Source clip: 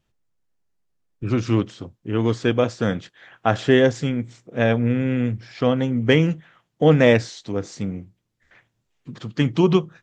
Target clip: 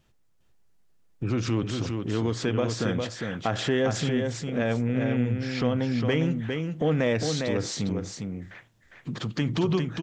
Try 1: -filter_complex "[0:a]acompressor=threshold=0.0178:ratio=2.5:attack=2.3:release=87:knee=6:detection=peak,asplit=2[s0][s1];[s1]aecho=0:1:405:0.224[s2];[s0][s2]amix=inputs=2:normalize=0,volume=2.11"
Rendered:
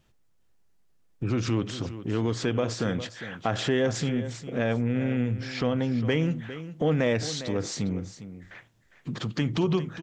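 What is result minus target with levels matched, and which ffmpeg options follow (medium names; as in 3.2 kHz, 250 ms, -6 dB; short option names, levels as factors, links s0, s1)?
echo-to-direct -8 dB
-filter_complex "[0:a]acompressor=threshold=0.0178:ratio=2.5:attack=2.3:release=87:knee=6:detection=peak,asplit=2[s0][s1];[s1]aecho=0:1:405:0.562[s2];[s0][s2]amix=inputs=2:normalize=0,volume=2.11"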